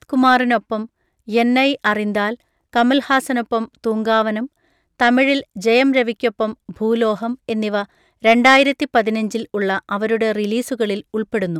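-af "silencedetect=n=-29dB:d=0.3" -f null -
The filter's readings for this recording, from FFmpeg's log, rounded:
silence_start: 0.85
silence_end: 1.28 | silence_duration: 0.43
silence_start: 2.34
silence_end: 2.73 | silence_duration: 0.39
silence_start: 4.46
silence_end: 5.00 | silence_duration: 0.54
silence_start: 7.84
silence_end: 8.24 | silence_duration: 0.40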